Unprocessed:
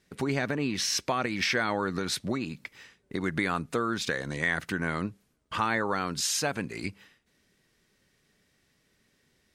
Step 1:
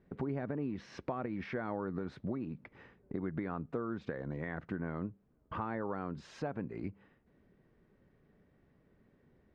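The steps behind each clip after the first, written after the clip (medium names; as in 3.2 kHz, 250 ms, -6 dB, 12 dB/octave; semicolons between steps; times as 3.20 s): Bessel low-pass 750 Hz, order 2; compression 2:1, threshold -49 dBFS, peak gain reduction 13 dB; trim +5.5 dB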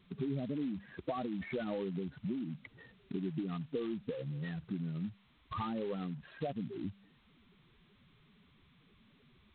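spectral contrast enhancement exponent 3; trim +1 dB; G.726 16 kbps 8 kHz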